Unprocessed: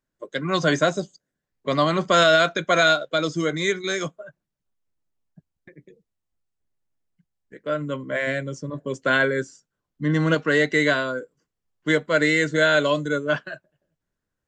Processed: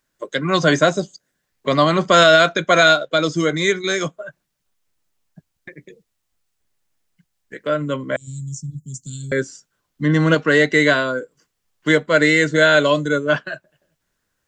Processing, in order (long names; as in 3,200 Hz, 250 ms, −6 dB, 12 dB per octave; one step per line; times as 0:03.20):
0:08.16–0:09.32: elliptic band-stop filter 160–6,900 Hz, stop band 60 dB
one half of a high-frequency compander encoder only
level +5 dB